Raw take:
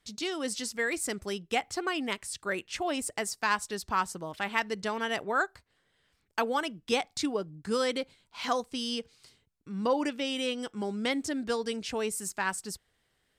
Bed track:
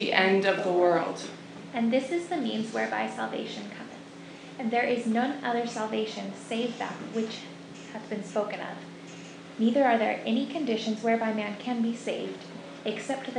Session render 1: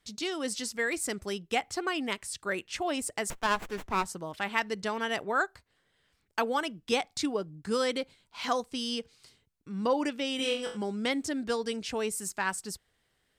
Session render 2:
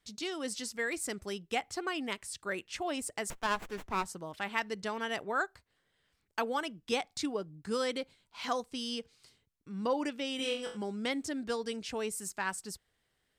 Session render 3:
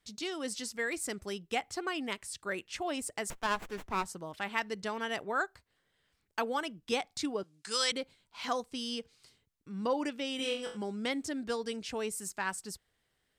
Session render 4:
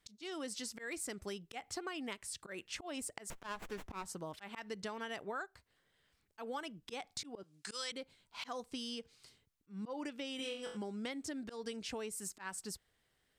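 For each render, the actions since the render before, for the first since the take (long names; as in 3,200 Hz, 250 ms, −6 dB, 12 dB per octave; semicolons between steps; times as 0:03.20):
0:03.30–0:04.05: windowed peak hold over 9 samples; 0:10.37–0:10.77: flutter between parallel walls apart 3.8 metres, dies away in 0.39 s
level −4 dB
0:07.43–0:07.92: meter weighting curve ITU-R 468
volume swells 206 ms; downward compressor, threshold −39 dBFS, peak gain reduction 11.5 dB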